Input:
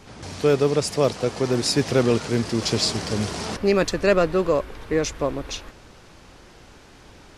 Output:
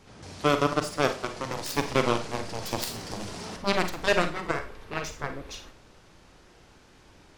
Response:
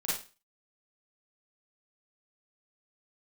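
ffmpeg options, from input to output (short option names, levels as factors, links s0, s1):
-filter_complex "[0:a]aeval=exprs='0.422*(cos(1*acos(clip(val(0)/0.422,-1,1)))-cos(1*PI/2))+0.168*(cos(3*acos(clip(val(0)/0.422,-1,1)))-cos(3*PI/2))+0.00841*(cos(7*acos(clip(val(0)/0.422,-1,1)))-cos(7*PI/2))':c=same,asoftclip=type=tanh:threshold=0.335,asplit=2[s0][s1];[1:a]atrim=start_sample=2205[s2];[s1][s2]afir=irnorm=-1:irlink=0,volume=0.299[s3];[s0][s3]amix=inputs=2:normalize=0"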